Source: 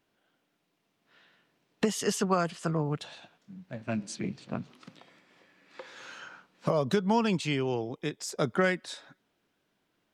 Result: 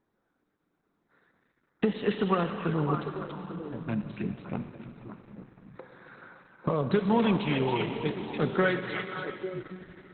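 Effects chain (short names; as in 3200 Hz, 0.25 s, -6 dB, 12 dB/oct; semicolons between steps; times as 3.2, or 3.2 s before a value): Wiener smoothing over 15 samples; bell 640 Hz -9.5 dB 0.22 oct; delay with a stepping band-pass 0.282 s, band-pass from 2700 Hz, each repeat -1.4 oct, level -1.5 dB; Schroeder reverb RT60 3.9 s, combs from 30 ms, DRR 7.5 dB; gain +2 dB; Opus 8 kbps 48000 Hz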